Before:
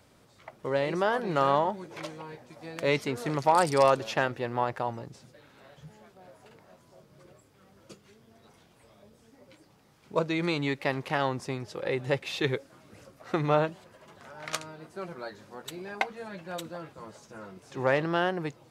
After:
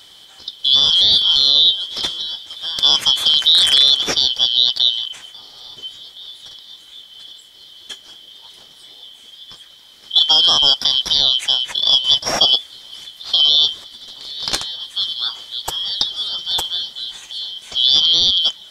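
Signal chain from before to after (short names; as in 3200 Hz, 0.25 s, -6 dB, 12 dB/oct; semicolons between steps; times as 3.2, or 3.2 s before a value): four-band scrambler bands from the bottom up 3412; maximiser +17.5 dB; gain -1 dB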